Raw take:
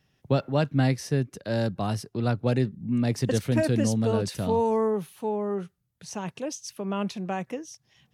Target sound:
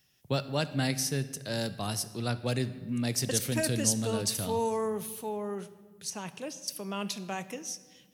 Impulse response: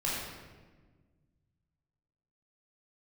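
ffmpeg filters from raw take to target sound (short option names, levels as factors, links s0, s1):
-filter_complex "[0:a]asettb=1/sr,asplit=3[s0][s1][s2];[s0]atrim=end=6.104[s3];[s1]atrim=start=6.1:end=6.68,asetpts=PTS-STARTPTS,afade=t=in:d=0.004:c=qsin,afade=t=out:st=0.576:d=0.004:c=qsin,acrossover=split=2800[s4][s5];[s5]acompressor=threshold=0.00282:ratio=4:attack=1:release=60[s6];[s4][s6]amix=inputs=2:normalize=0[s7];[s2]atrim=start=6.676[s8];[s3][s7]acrossfade=d=0.004:c1=hsin:c2=qsin[s9];[s9][s8]acrossfade=d=0.004:c1=qsin:c2=hsin,crystalizer=i=6:c=0,asplit=2[s10][s11];[1:a]atrim=start_sample=2205,adelay=29[s12];[s11][s12]afir=irnorm=-1:irlink=0,volume=0.0944[s13];[s10][s13]amix=inputs=2:normalize=0,volume=0.422"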